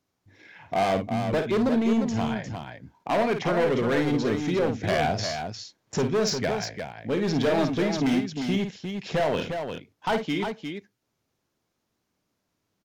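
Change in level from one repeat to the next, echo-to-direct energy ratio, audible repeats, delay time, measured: repeats not evenly spaced, −4.0 dB, 2, 52 ms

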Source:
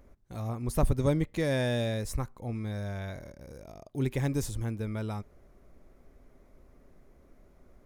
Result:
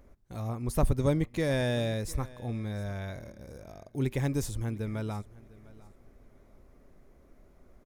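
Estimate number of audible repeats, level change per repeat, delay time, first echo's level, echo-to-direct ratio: 2, −13.0 dB, 703 ms, −21.0 dB, −21.0 dB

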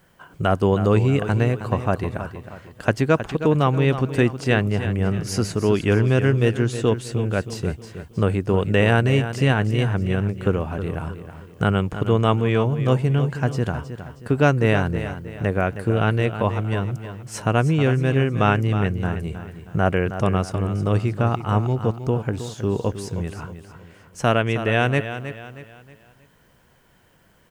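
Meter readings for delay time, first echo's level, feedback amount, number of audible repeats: 316 ms, −11.0 dB, 39%, 3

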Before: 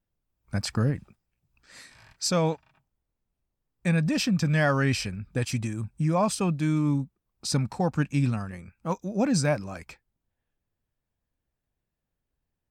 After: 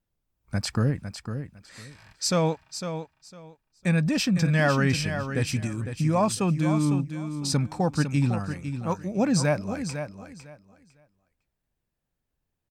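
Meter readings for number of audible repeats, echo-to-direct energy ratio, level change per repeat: 2, −9.0 dB, −14.0 dB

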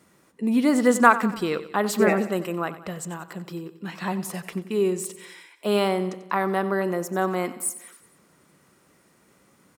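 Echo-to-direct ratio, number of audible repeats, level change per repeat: −13.5 dB, 4, −5.5 dB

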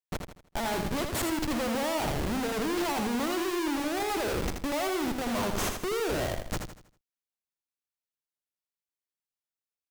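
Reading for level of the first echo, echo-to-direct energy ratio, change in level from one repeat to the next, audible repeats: −6.0 dB, −5.5 dB, −8.5 dB, 4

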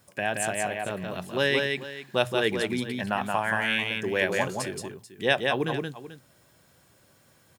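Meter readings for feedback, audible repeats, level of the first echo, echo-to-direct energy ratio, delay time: repeats not evenly spaced, 2, −3.5 dB, −3.0 dB, 175 ms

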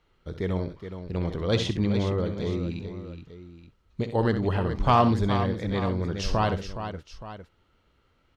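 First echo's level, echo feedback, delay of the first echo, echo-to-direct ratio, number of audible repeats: −10.0 dB, repeats not evenly spaced, 64 ms, −6.0 dB, 3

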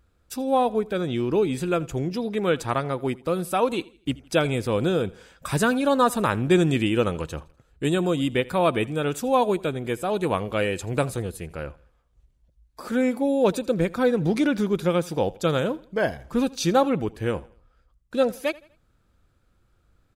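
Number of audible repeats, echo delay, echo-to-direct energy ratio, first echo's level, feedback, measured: 2, 82 ms, −21.5 dB, −22.0 dB, 39%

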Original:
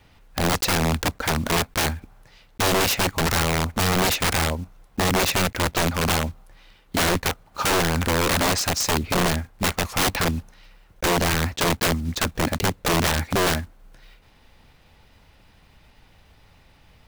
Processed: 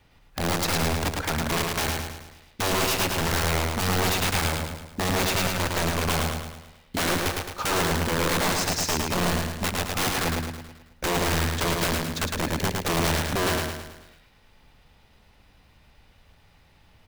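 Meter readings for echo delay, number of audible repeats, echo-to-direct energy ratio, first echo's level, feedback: 108 ms, 6, −2.0 dB, −3.0 dB, 49%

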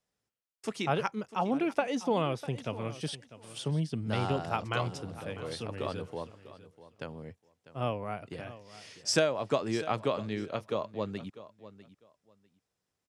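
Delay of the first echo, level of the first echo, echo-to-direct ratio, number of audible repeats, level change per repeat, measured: 648 ms, −16.0 dB, −16.0 dB, 2, −14.5 dB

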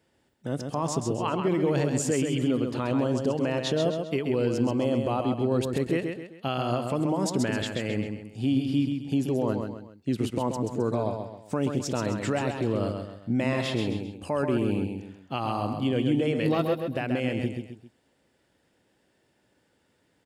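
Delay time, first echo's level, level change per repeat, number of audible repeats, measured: 132 ms, −5.5 dB, −8.0 dB, 3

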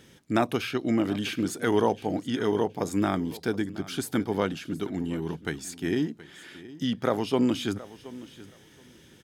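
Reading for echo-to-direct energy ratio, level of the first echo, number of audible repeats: −18.0 dB, −18.0 dB, 2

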